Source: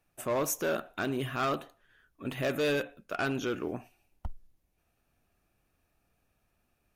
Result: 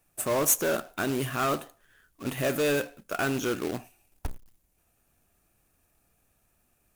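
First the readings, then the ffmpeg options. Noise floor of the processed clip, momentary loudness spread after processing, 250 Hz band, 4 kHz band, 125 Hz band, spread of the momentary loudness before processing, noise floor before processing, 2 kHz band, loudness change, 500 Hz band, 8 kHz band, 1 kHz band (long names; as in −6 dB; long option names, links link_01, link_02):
−71 dBFS, 17 LU, +3.5 dB, +3.5 dB, +3.5 dB, 15 LU, −76 dBFS, +3.0 dB, +4.5 dB, +3.0 dB, +10.5 dB, +3.0 dB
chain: -af "highshelf=frequency=6000:width_type=q:width=1.5:gain=7,acrusher=bits=2:mode=log:mix=0:aa=0.000001,volume=3dB"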